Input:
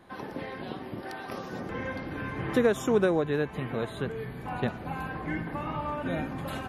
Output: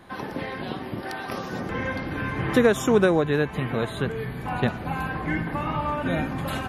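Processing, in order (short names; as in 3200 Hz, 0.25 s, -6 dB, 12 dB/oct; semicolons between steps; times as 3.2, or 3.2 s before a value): bell 440 Hz -3 dB 2.1 oct; gain +7.5 dB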